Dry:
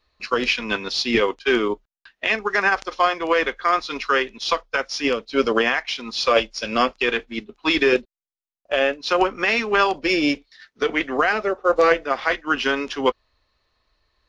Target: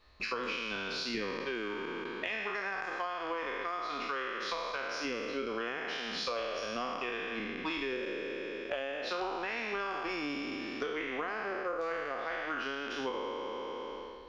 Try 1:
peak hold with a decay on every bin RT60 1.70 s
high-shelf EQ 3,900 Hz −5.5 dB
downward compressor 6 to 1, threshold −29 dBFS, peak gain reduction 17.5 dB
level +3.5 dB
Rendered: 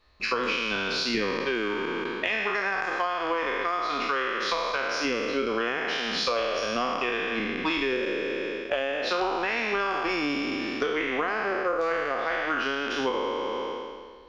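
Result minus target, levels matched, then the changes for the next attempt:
downward compressor: peak gain reduction −9 dB
change: downward compressor 6 to 1, threshold −39.5 dBFS, peak gain reduction 26.5 dB

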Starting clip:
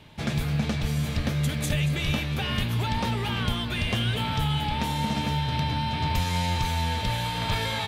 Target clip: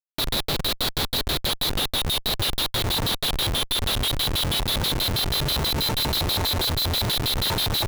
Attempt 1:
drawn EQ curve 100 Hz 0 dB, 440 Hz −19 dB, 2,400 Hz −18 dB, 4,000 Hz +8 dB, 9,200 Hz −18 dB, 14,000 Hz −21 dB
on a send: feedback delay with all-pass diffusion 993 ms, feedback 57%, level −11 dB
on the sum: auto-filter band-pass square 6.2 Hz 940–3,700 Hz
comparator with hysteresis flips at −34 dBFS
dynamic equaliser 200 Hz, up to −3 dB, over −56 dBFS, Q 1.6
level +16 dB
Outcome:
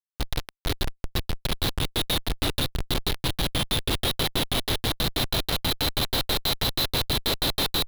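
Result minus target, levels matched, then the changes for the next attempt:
comparator with hysteresis: distortion +6 dB
change: comparator with hysteresis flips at −43.5 dBFS

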